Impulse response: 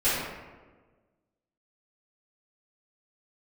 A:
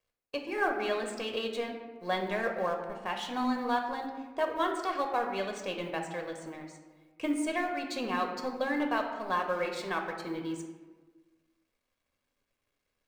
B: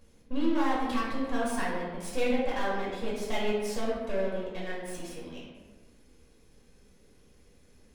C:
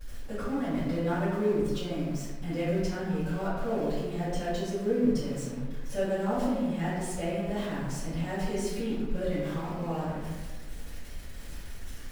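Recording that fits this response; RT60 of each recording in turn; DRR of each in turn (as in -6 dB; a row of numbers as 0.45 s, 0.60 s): C; 1.4 s, 1.4 s, 1.4 s; 2.5 dB, -7.0 dB, -14.5 dB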